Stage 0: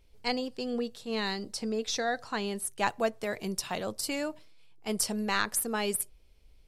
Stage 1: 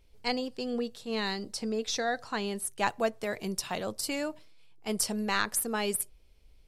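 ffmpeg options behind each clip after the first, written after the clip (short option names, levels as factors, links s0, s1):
-af anull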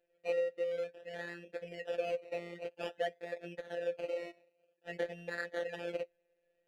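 -filter_complex "[0:a]acrusher=samples=21:mix=1:aa=0.000001:lfo=1:lforange=12.6:lforate=0.52,asplit=3[s0][s1][s2];[s0]bandpass=f=530:t=q:w=8,volume=1[s3];[s1]bandpass=f=1840:t=q:w=8,volume=0.501[s4];[s2]bandpass=f=2480:t=q:w=8,volume=0.355[s5];[s3][s4][s5]amix=inputs=3:normalize=0,afftfilt=real='hypot(re,im)*cos(PI*b)':imag='0':win_size=1024:overlap=0.75,volume=2.51"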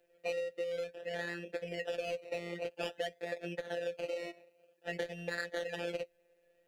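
-filter_complex "[0:a]acrossover=split=140|3000[s0][s1][s2];[s1]acompressor=threshold=0.00708:ratio=6[s3];[s0][s3][s2]amix=inputs=3:normalize=0,volume=2.37"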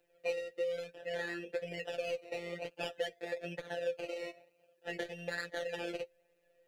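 -af "flanger=delay=6.5:depth=2.2:regen=31:speed=1.1:shape=triangular,volume=1.5"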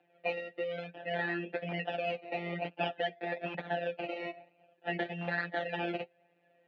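-filter_complex "[0:a]acrossover=split=220|2100[s0][s1][s2];[s0]aeval=exprs='(mod(251*val(0)+1,2)-1)/251':c=same[s3];[s3][s1][s2]amix=inputs=3:normalize=0,highpass=150,equalizer=f=180:t=q:w=4:g=8,equalizer=f=280:t=q:w=4:g=4,equalizer=f=500:t=q:w=4:g=-9,equalizer=f=750:t=q:w=4:g=10,lowpass=f=3200:w=0.5412,lowpass=f=3200:w=1.3066,volume=1.88"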